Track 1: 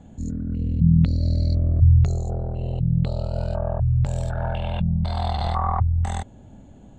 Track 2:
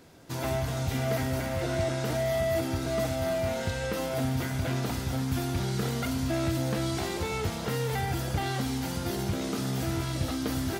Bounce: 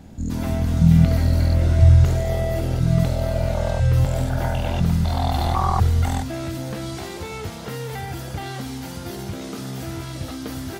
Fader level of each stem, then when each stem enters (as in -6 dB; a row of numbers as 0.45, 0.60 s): +2.5, -0.5 dB; 0.00, 0.00 s